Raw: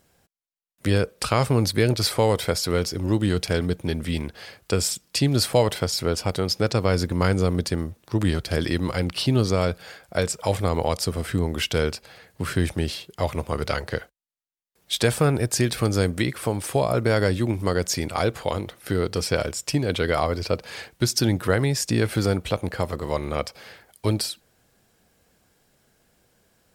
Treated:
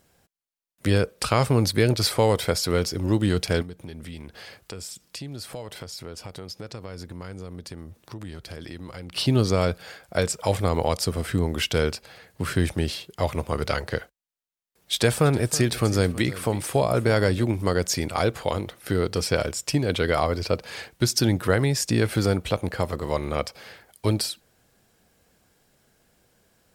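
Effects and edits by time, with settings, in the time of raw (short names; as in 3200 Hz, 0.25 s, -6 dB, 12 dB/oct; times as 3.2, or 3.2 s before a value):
3.62–9.13 compressor 3:1, threshold -38 dBFS
14.93–17.44 echo 0.323 s -17 dB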